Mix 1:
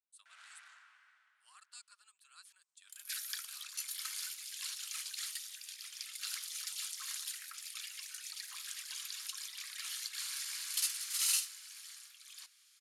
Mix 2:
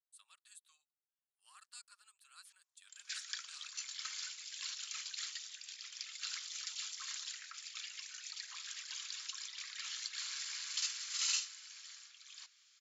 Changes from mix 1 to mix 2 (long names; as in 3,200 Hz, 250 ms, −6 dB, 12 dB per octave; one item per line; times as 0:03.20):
first sound: muted
second sound: add linear-phase brick-wall low-pass 7,600 Hz